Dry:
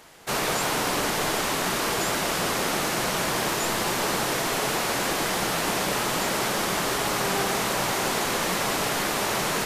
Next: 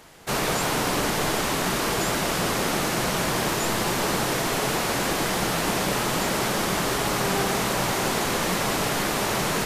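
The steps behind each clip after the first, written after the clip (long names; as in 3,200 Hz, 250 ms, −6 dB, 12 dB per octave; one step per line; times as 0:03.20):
low-shelf EQ 260 Hz +6.5 dB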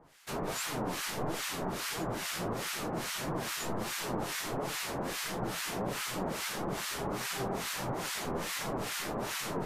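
flanger 1.5 Hz, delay 5.6 ms, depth 7.6 ms, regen +56%
two-band tremolo in antiphase 2.4 Hz, depth 100%, crossover 1,200 Hz
level −2.5 dB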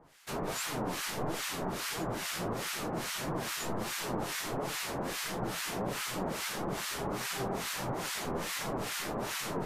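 no processing that can be heard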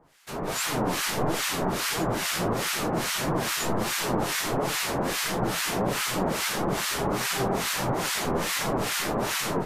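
automatic gain control gain up to 8.5 dB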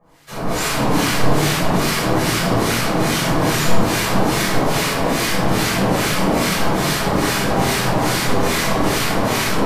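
convolution reverb RT60 1.1 s, pre-delay 8 ms, DRR −9.5 dB
level −4 dB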